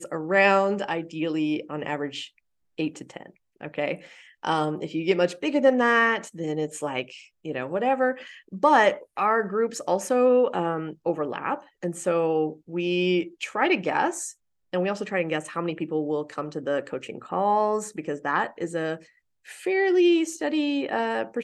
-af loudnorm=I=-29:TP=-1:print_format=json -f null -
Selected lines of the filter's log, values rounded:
"input_i" : "-25.1",
"input_tp" : "-5.5",
"input_lra" : "4.4",
"input_thresh" : "-35.6",